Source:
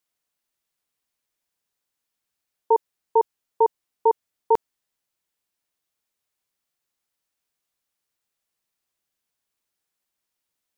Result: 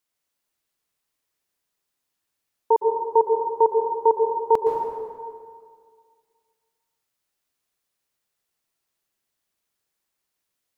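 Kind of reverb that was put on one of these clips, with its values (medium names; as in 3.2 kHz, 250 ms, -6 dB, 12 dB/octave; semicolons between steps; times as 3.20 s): plate-style reverb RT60 2 s, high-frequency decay 0.65×, pre-delay 105 ms, DRR 1 dB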